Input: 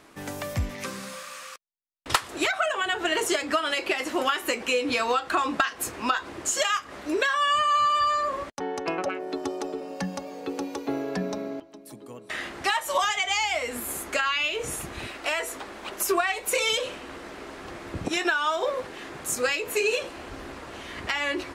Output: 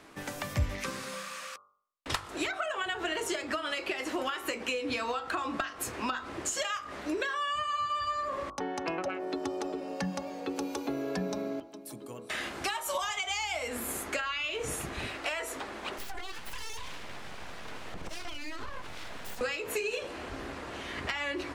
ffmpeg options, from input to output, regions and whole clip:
ffmpeg -i in.wav -filter_complex "[0:a]asettb=1/sr,asplit=3[link_01][link_02][link_03];[link_01]atrim=end=10.564[link_04];[link_02]atrim=start=10.56:end=13.68,asetpts=PTS-STARTPTS,afade=type=in:duration=0.004:curve=qsin,afade=type=out:start_time=3.116:duration=0.004:curve=qsin,highshelf=frequency=7600:gain=9,bandreject=frequency=1900:width=12[link_05];[link_03]atrim=start=13.676[link_06];[link_04][link_05]acrossfade=duration=0.004:curve1=hsin:curve2=qsin[link_07];[link_07][link_06]acrossfade=duration=0.004:curve1=qsin:curve2=hsin,asettb=1/sr,asplit=3[link_08][link_09][link_10];[link_08]atrim=end=15.984[link_11];[link_09]atrim=start=15.98:end=19.41,asetpts=PTS-STARTPTS,afade=type=in:duration=0.004:curve=qsin,afade=type=out:start_time=3.426:duration=0.004:curve=qsin,acompressor=threshold=-33dB:ratio=8:attack=3.2:release=140:knee=1:detection=peak,aeval=exprs='abs(val(0))':channel_layout=same[link_12];[link_10]atrim=start=19.406[link_13];[link_11][link_12]acrossfade=duration=0.004:curve1=hsin:curve2=qsin[link_14];[link_14][link_13]acrossfade=duration=0.004:curve1=qsin:curve2=hsin,highshelf=frequency=7500:gain=-5,bandreject=frequency=48.94:width_type=h:width=4,bandreject=frequency=97.88:width_type=h:width=4,bandreject=frequency=146.82:width_type=h:width=4,bandreject=frequency=195.76:width_type=h:width=4,bandreject=frequency=244.7:width_type=h:width=4,bandreject=frequency=293.64:width_type=h:width=4,bandreject=frequency=342.58:width_type=h:width=4,bandreject=frequency=391.52:width_type=h:width=4,bandreject=frequency=440.46:width_type=h:width=4,bandreject=frequency=489.4:width_type=h:width=4,bandreject=frequency=538.34:width_type=h:width=4,bandreject=frequency=587.28:width_type=h:width=4,bandreject=frequency=636.22:width_type=h:width=4,bandreject=frequency=685.16:width_type=h:width=4,bandreject=frequency=734.1:width_type=h:width=4,bandreject=frequency=783.04:width_type=h:width=4,bandreject=frequency=831.98:width_type=h:width=4,bandreject=frequency=880.92:width_type=h:width=4,bandreject=frequency=929.86:width_type=h:width=4,bandreject=frequency=978.8:width_type=h:width=4,bandreject=frequency=1027.74:width_type=h:width=4,bandreject=frequency=1076.68:width_type=h:width=4,bandreject=frequency=1125.62:width_type=h:width=4,bandreject=frequency=1174.56:width_type=h:width=4,bandreject=frequency=1223.5:width_type=h:width=4,bandreject=frequency=1272.44:width_type=h:width=4,bandreject=frequency=1321.38:width_type=h:width=4,bandreject=frequency=1370.32:width_type=h:width=4,bandreject=frequency=1419.26:width_type=h:width=4,acrossover=split=130[link_15][link_16];[link_16]acompressor=threshold=-30dB:ratio=6[link_17];[link_15][link_17]amix=inputs=2:normalize=0" out.wav

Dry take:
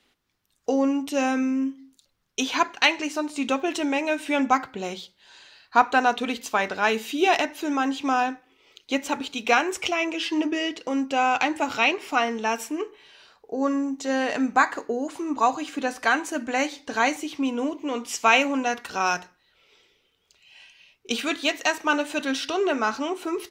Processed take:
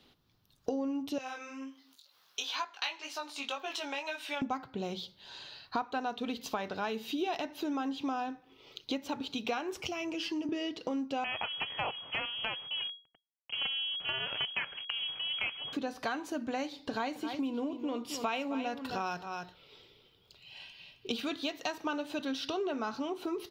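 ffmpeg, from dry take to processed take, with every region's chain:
ffmpeg -i in.wav -filter_complex "[0:a]asettb=1/sr,asplit=3[link_01][link_02][link_03];[link_01]atrim=end=1.184[link_04];[link_02]atrim=start=1.18:end=4.42,asetpts=PTS-STARTPTS,afade=type=in:duration=0.004:curve=qsin,afade=type=out:start_time=3.236:duration=0.004:curve=qsin,highpass=980,acompressor=mode=upward:threshold=-48dB:ratio=2.5:attack=3.2:release=140:knee=2.83:detection=peak,flanger=delay=18.5:depth=2.9:speed=2[link_05];[link_03]atrim=start=4.416[link_06];[link_04][link_05]acrossfade=duration=0.004:curve1=hsin:curve2=qsin[link_07];[link_07][link_06]acrossfade=duration=0.004:curve1=qsin:curve2=hsin,asettb=1/sr,asplit=3[link_08][link_09][link_10];[link_08]atrim=end=9.804[link_11];[link_09]atrim=start=9.8:end=10.49,asetpts=PTS-STARTPTS,afade=type=in:duration=0.004:curve=qsin,afade=type=out:start_time=0.686:duration=0.004:curve=qsin,equalizer=frequency=3700:width_type=o:width=0.29:gain=-11.5,acrossover=split=210|3000[link_12][link_13][link_14];[link_13]acompressor=threshold=-36dB:ratio=2.5:attack=3.2:release=140:knee=2.83:detection=peak[link_15];[link_12][link_15][link_14]amix=inputs=3:normalize=0[link_16];[link_10]atrim=start=10.486[link_17];[link_11][link_16]acrossfade=duration=0.004:curve1=hsin:curve2=qsin[link_18];[link_18][link_17]acrossfade=duration=0.004:curve1=qsin:curve2=hsin,asettb=1/sr,asplit=3[link_19][link_20][link_21];[link_19]atrim=end=11.244[link_22];[link_20]atrim=start=11.24:end=15.73,asetpts=PTS-STARTPTS,afade=type=in:duration=0.004:curve=qsin,afade=type=out:start_time=4.486:duration=0.004:curve=qsin,acrusher=bits=4:dc=4:mix=0:aa=0.000001,lowpass=frequency=2800:width_type=q:width=0.5098,lowpass=frequency=2800:width_type=q:width=0.6013,lowpass=frequency=2800:width_type=q:width=0.9,lowpass=frequency=2800:width_type=q:width=2.563,afreqshift=-3300[link_23];[link_21]atrim=start=15.726[link_24];[link_22][link_23]acrossfade=duration=0.004:curve1=hsin:curve2=qsin[link_25];[link_25][link_24]acrossfade=duration=0.004:curve1=qsin:curve2=hsin,asettb=1/sr,asplit=3[link_26][link_27][link_28];[link_26]atrim=end=16.724[link_29];[link_27]atrim=start=16.72:end=21.16,asetpts=PTS-STARTPTS,afade=type=in:duration=0.004:curve=qsin,afade=type=out:start_time=4.436:duration=0.004:curve=qsin,bandreject=frequency=6100:width=7.4,aecho=1:1:265:0.237,atrim=end_sample=195804[link_30];[link_28]atrim=start=21.156[link_31];[link_29][link_30]acrossfade=duration=0.004:curve1=hsin:curve2=qsin[link_32];[link_32][link_31]acrossfade=duration=0.004:curve1=qsin:curve2=hsin,equalizer=frequency=125:width_type=o:width=1:gain=9,equalizer=frequency=2000:width_type=o:width=1:gain=-8,equalizer=frequency=4000:width_type=o:width=1:gain=5,equalizer=frequency=8000:width_type=o:width=1:gain=-12,acompressor=threshold=-38dB:ratio=4,volume=3.5dB" out.wav

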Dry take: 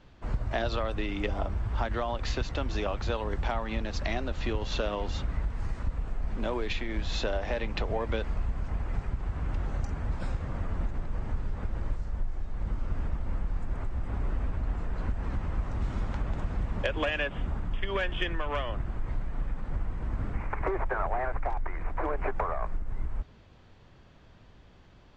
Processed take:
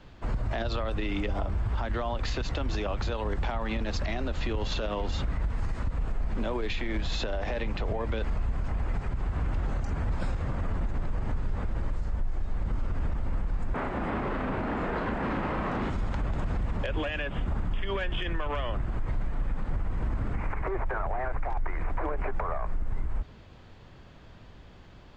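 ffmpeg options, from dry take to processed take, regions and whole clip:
ffmpeg -i in.wav -filter_complex "[0:a]asettb=1/sr,asplit=3[link_01][link_02][link_03];[link_01]atrim=end=13.744[link_04];[link_02]atrim=start=13.74:end=15.9,asetpts=PTS-STARTPTS,afade=type=in:duration=0.004:curve=qsin,afade=type=out:start_time=2.156:duration=0.004:curve=qsin,acrossover=split=180 3400:gain=0.0891 1 0.224[link_05][link_06][link_07];[link_05][link_06][link_07]amix=inputs=3:normalize=0,asplit=2[link_08][link_09];[link_09]adelay=36,volume=-3.5dB[link_10];[link_08][link_10]amix=inputs=2:normalize=0,atrim=end_sample=95256,aeval=exprs='0.0473*sin(PI/2*2*val(0)/0.0473)':channel_layout=same[link_11];[link_03]atrim=start=15.896[link_12];[link_04][link_11]acrossfade=duration=0.004:curve1=hsin:curve2=qsin[link_13];[link_13][link_12]acrossfade=duration=0.004:curve1=qsin:curve2=hsin,bandreject=frequency=5800:width=20,acrossover=split=240[link_14][link_15];[link_15]acompressor=threshold=-32dB:ratio=3[link_16];[link_14][link_16]amix=inputs=2:normalize=0,alimiter=level_in=2.5dB:limit=-24dB:level=0:latency=1:release=43,volume=-2.5dB,volume=5dB" out.wav

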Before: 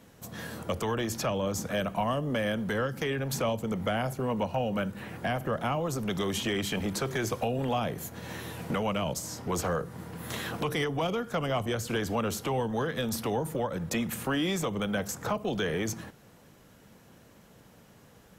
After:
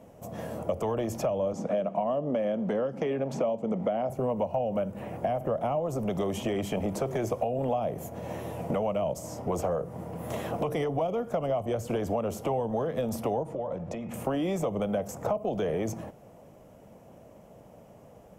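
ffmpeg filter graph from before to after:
ffmpeg -i in.wav -filter_complex "[0:a]asettb=1/sr,asplit=3[link_01][link_02][link_03];[link_01]atrim=end=1.534[link_04];[link_02]atrim=start=1.53:end=4.1,asetpts=PTS-STARTPTS,afade=type=in:duration=0.004:curve=qsin,afade=type=out:start_time=2.566:duration=0.004:curve=qsin,lowpass=5500,lowshelf=frequency=130:width_type=q:width=1.5:gain=-12[link_05];[link_03]atrim=start=4.096[link_06];[link_04][link_05]acrossfade=duration=0.004:curve1=hsin:curve2=qsin[link_07];[link_07][link_06]acrossfade=duration=0.004:curve1=qsin:curve2=hsin,asettb=1/sr,asplit=3[link_08][link_09][link_10];[link_08]atrim=end=13.434[link_11];[link_09]atrim=start=13.43:end=14.14,asetpts=PTS-STARTPTS,afade=type=in:duration=0.004:curve=qsin,afade=type=out:start_time=0.706:duration=0.004:curve=qsin,lowpass=5600,bandreject=frequency=80.55:width_type=h:width=4,bandreject=frequency=161.1:width_type=h:width=4,bandreject=frequency=241.65:width_type=h:width=4,bandreject=frequency=322.2:width_type=h:width=4,bandreject=frequency=402.75:width_type=h:width=4,bandreject=frequency=483.3:width_type=h:width=4,bandreject=frequency=563.85:width_type=h:width=4,bandreject=frequency=644.4:width_type=h:width=4,bandreject=frequency=724.95:width_type=h:width=4,bandreject=frequency=805.5:width_type=h:width=4,bandreject=frequency=886.05:width_type=h:width=4,bandreject=frequency=966.6:width_type=h:width=4,bandreject=frequency=1047.15:width_type=h:width=4,bandreject=frequency=1127.7:width_type=h:width=4,bandreject=frequency=1208.25:width_type=h:width=4,bandreject=frequency=1288.8:width_type=h:width=4,bandreject=frequency=1369.35:width_type=h:width=4,bandreject=frequency=1449.9:width_type=h:width=4,bandreject=frequency=1530.45:width_type=h:width=4,bandreject=frequency=1611:width_type=h:width=4,bandreject=frequency=1691.55:width_type=h:width=4,bandreject=frequency=1772.1:width_type=h:width=4,bandreject=frequency=1852.65:width_type=h:width=4,bandreject=frequency=1933.2:width_type=h:width=4,bandreject=frequency=2013.75:width_type=h:width=4,bandreject=frequency=2094.3:width_type=h:width=4,bandreject=frequency=2174.85:width_type=h:width=4,bandreject=frequency=2255.4:width_type=h:width=4,bandreject=frequency=2335.95:width_type=h:width=4,bandreject=frequency=2416.5:width_type=h:width=4,bandreject=frequency=2497.05:width_type=h:width=4,bandreject=frequency=2577.6:width_type=h:width=4,bandreject=frequency=2658.15:width_type=h:width=4,bandreject=frequency=2738.7:width_type=h:width=4,bandreject=frequency=2819.25:width_type=h:width=4,bandreject=frequency=2899.8:width_type=h:width=4,acompressor=threshold=-35dB:ratio=12:attack=3.2:release=140:knee=1:detection=peak[link_12];[link_10]atrim=start=14.136[link_13];[link_11][link_12]acrossfade=duration=0.004:curve1=hsin:curve2=qsin[link_14];[link_14][link_13]acrossfade=duration=0.004:curve1=qsin:curve2=hsin,equalizer=frequency=630:width_type=o:width=0.67:gain=11,equalizer=frequency=1600:width_type=o:width=0.67:gain=-10,equalizer=frequency=4000:width_type=o:width=0.67:gain=-11,acompressor=threshold=-27dB:ratio=6,highshelf=frequency=4100:gain=-8,volume=2dB" out.wav

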